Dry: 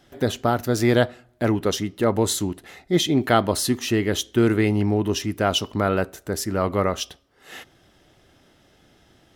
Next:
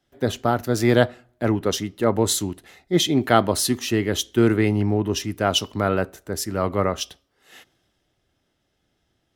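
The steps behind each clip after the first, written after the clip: three bands expanded up and down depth 40%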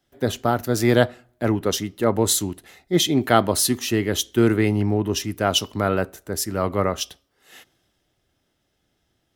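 treble shelf 9.1 kHz +6.5 dB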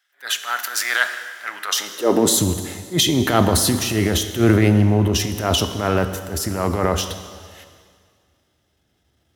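transient shaper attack -11 dB, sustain +7 dB; high-pass sweep 1.6 kHz -> 66 Hz, 1.62–2.61 s; on a send at -9 dB: reverberation RT60 1.9 s, pre-delay 23 ms; on the sum: trim +2.5 dB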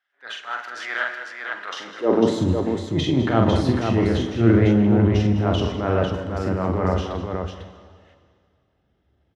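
tape spacing loss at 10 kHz 34 dB; on a send: multi-tap echo 44/203/499 ms -4/-13/-5 dB; on the sum: trim -1.5 dB

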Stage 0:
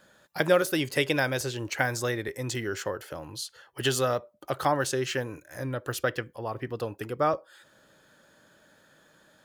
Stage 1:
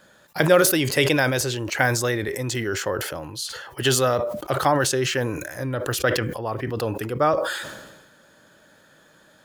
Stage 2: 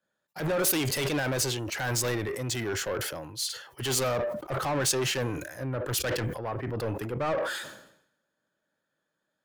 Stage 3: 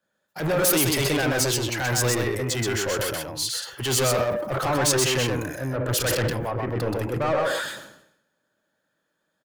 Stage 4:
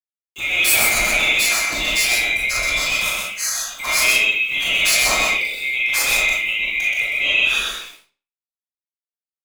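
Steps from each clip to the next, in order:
decay stretcher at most 46 dB/s; trim +5 dB
peak limiter -11 dBFS, peak gain reduction 9.5 dB; saturation -26 dBFS, distortion -7 dB; three bands expanded up and down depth 100%
delay 127 ms -3 dB; trim +4 dB
split-band scrambler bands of 2 kHz; small samples zeroed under -45.5 dBFS; reverberation RT60 0.35 s, pre-delay 4 ms, DRR -4.5 dB

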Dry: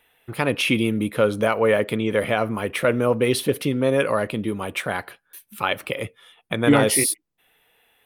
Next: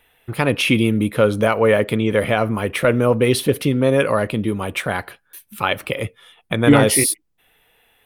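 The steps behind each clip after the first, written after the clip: bass shelf 96 Hz +10 dB; trim +3 dB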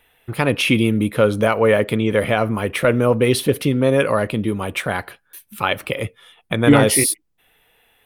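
no audible change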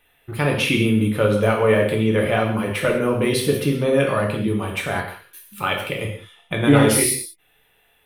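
gated-style reverb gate 230 ms falling, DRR -0.5 dB; trim -5 dB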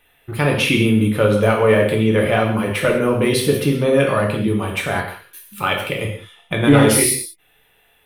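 saturation -2.5 dBFS, distortion -28 dB; trim +3 dB

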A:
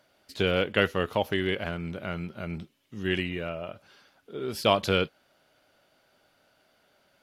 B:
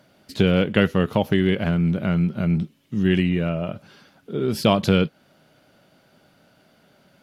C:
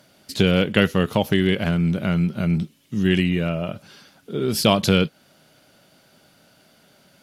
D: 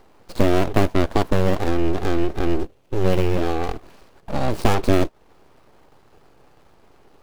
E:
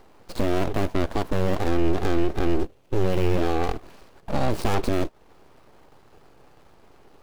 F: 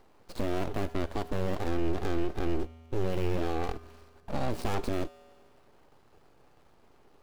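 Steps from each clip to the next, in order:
peaking EQ 170 Hz +13 dB 1.7 oct; compression 1.5:1, threshold -26 dBFS, peak gain reduction 5 dB; trim +5.5 dB
peaking EQ 9.4 kHz +9.5 dB 2.5 oct
median filter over 25 samples; in parallel at +1 dB: compression, threshold -28 dBFS, peak gain reduction 14.5 dB; on the sum: full-wave rectifier; trim +1.5 dB
peak limiter -11 dBFS, peak gain reduction 9.5 dB
feedback comb 81 Hz, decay 1.9 s, harmonics odd, mix 60%

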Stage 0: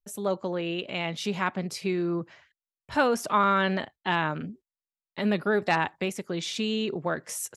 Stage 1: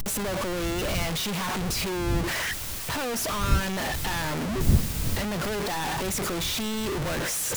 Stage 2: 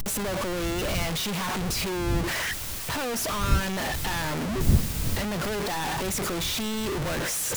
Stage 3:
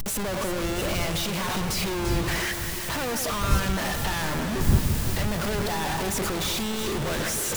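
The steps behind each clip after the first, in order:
one-bit comparator; wind noise 110 Hz -31 dBFS
no audible change
echo whose repeats swap between lows and highs 172 ms, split 1.8 kHz, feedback 79%, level -7 dB

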